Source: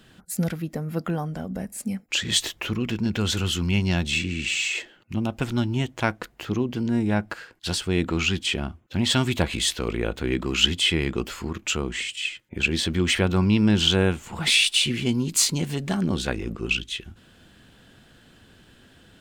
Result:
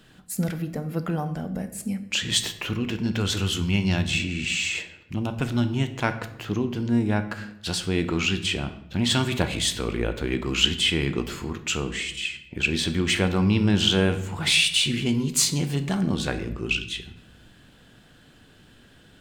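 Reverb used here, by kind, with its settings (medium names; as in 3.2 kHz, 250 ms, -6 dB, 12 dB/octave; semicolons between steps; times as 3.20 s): simulated room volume 270 m³, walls mixed, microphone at 0.41 m; trim -1 dB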